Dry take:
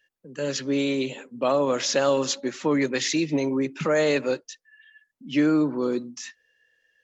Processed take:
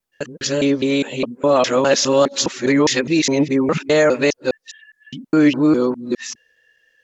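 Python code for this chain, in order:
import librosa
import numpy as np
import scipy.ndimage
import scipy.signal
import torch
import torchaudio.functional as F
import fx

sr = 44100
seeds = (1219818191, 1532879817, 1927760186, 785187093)

y = fx.local_reverse(x, sr, ms=205.0)
y = F.gain(torch.from_numpy(y), 7.5).numpy()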